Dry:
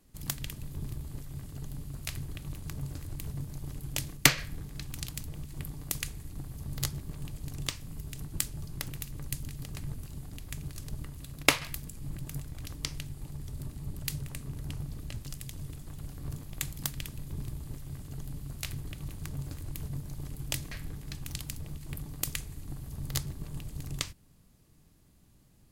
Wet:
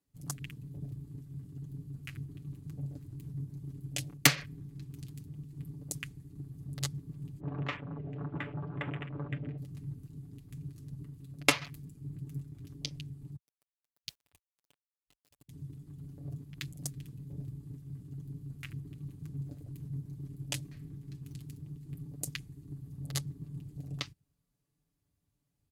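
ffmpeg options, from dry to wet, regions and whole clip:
ffmpeg -i in.wav -filter_complex "[0:a]asettb=1/sr,asplit=3[link_01][link_02][link_03];[link_01]atrim=end=7.404[link_04];[link_02]atrim=start=7.4:end=9.58,asetpts=PTS-STARTPTS,afade=type=in:duration=0.004:curve=qsin,afade=type=out:start_time=2.176:duration=0.004:curve=qsin,lowpass=frequency=2600:width=0.5412,lowpass=frequency=2600:width=1.3066,asplit=2[link_05][link_06];[link_06]highpass=frequency=720:poles=1,volume=24dB,asoftclip=type=tanh:threshold=-16dB[link_07];[link_05][link_07]amix=inputs=2:normalize=0,lowpass=frequency=1000:poles=1,volume=-6dB,adynamicequalizer=threshold=0.00316:dfrequency=1500:dqfactor=0.7:tfrequency=1500:tqfactor=0.7:attack=5:release=100:ratio=0.375:range=2:mode=boostabove:tftype=highshelf[link_08];[link_03]atrim=start=9.576[link_09];[link_04][link_08]acrossfade=duration=0.004:curve1=hsin:curve2=qsin[link_10];[link_10][link_09]acrossfade=duration=0.004:curve1=qsin:curve2=hsin,asettb=1/sr,asplit=3[link_11][link_12][link_13];[link_11]atrim=end=13.364[link_14];[link_12]atrim=start=13.36:end=15.49,asetpts=PTS-STARTPTS,afade=type=in:duration=0.004:curve=qsin,afade=type=out:start_time=2.126:duration=0.004:curve=qsin,highpass=frequency=460:width=0.5412,highpass=frequency=460:width=1.3066,acrusher=bits=4:dc=4:mix=0:aa=0.000001[link_15];[link_13]atrim=start=15.486[link_16];[link_14][link_15]acrossfade=duration=0.004:curve1=hsin:curve2=qsin[link_17];[link_17][link_16]acrossfade=duration=0.004:curve1=qsin:curve2=hsin,afwtdn=0.00708,highpass=90,aecho=1:1:7:0.65,volume=-3.5dB" out.wav

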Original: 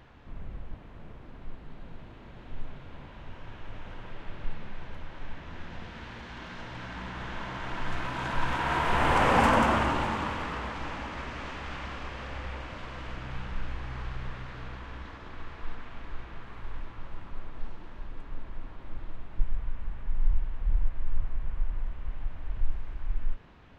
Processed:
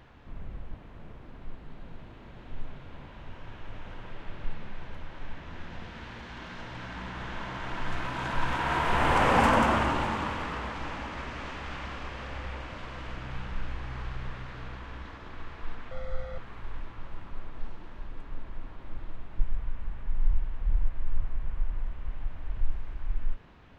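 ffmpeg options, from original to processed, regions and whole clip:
ffmpeg -i in.wav -filter_complex "[0:a]asettb=1/sr,asplit=3[link_01][link_02][link_03];[link_01]atrim=end=15.914[link_04];[link_02]atrim=start=15.91:end=16.38,asetpts=PTS-STARTPTS,afade=type=in:duration=0.004:curve=qsin,afade=type=out:start_time=0.466:duration=0.004:curve=qsin,aeval=exprs='val(0)+0.00708*sin(2*PI*520*n/s)':channel_layout=same,bandreject=frequency=2700:width=5.3,aecho=1:1:1.5:0.83,atrim=end_sample=20727[link_05];[link_03]atrim=start=16.376[link_06];[link_04][link_05]acrossfade=duration=0.004:curve1=hsin:curve2=qsin[link_07];[link_07][link_06]acrossfade=duration=0.004:curve1=qsin:curve2=hsin" out.wav

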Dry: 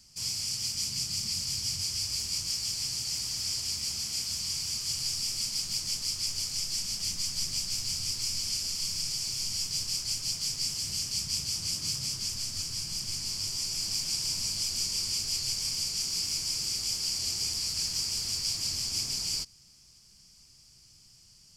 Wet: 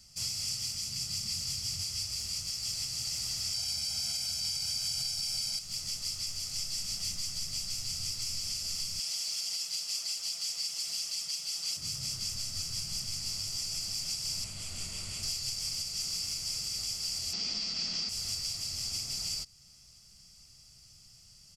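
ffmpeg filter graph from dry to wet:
ffmpeg -i in.wav -filter_complex "[0:a]asettb=1/sr,asplit=3[link_01][link_02][link_03];[link_01]atrim=end=3.544[link_04];[link_02]atrim=start=3.54:end=5.59,asetpts=PTS-STARTPTS,afade=type=in:duration=0.004:curve=qsin,afade=type=out:start_time=2.046:duration=0.004:curve=qsin,lowshelf=frequency=140:gain=-8,aecho=1:1:1.3:0.91,atrim=end_sample=90405,acontrast=82[link_05];[link_03]atrim=start=5.586[link_06];[link_04][link_05]acrossfade=duration=0.004:curve1=hsin:curve2=qsin[link_07];[link_07][link_06]acrossfade=duration=0.004:curve1=qsin:curve2=hsin,asettb=1/sr,asplit=3[link_08][link_09][link_10];[link_08]atrim=end=8.994[link_11];[link_09]atrim=start=8.99:end=11.77,asetpts=PTS-STARTPTS,afade=type=in:duration=0.004:curve=qsin,afade=type=out:start_time=2.776:duration=0.004:curve=qsin,highpass=420,equalizer=frequency=3300:width=1.5:gain=3,aecho=1:1:5.9:0.79,atrim=end_sample=122598[link_12];[link_10]atrim=start=11.766[link_13];[link_11][link_12]acrossfade=duration=0.004:curve1=hsin:curve2=qsin[link_14];[link_14][link_13]acrossfade=duration=0.004:curve1=qsin:curve2=hsin,asettb=1/sr,asplit=3[link_15][link_16][link_17];[link_15]atrim=end=14.444[link_18];[link_16]atrim=start=14.44:end=15.23,asetpts=PTS-STARTPTS,afade=type=in:duration=0.004:curve=qsin,afade=type=out:start_time=0.786:duration=0.004:curve=qsin,lowpass=8400,equalizer=frequency=5300:width=1.4:gain=-11.5[link_19];[link_17]atrim=start=15.226[link_20];[link_18][link_19]acrossfade=duration=0.004:curve1=hsin:curve2=qsin[link_21];[link_21][link_20]acrossfade=duration=0.004:curve1=qsin:curve2=hsin,asettb=1/sr,asplit=3[link_22][link_23][link_24];[link_22]atrim=end=17.334[link_25];[link_23]atrim=start=17.33:end=18.09,asetpts=PTS-STARTPTS,afade=type=in:duration=0.004:curve=qsin,afade=type=out:start_time=0.756:duration=0.004:curve=qsin,lowpass=frequency=5200:width=0.5412,lowpass=frequency=5200:width=1.3066,acontrast=76,lowshelf=frequency=150:width_type=q:width=3:gain=-10[link_26];[link_24]atrim=start=18.086[link_27];[link_25][link_26]acrossfade=duration=0.004:curve1=hsin:curve2=qsin[link_28];[link_28][link_27]acrossfade=duration=0.004:curve1=qsin:curve2=hsin,aecho=1:1:1.5:0.37,alimiter=level_in=0.5dB:limit=-24dB:level=0:latency=1:release=367,volume=-0.5dB" out.wav

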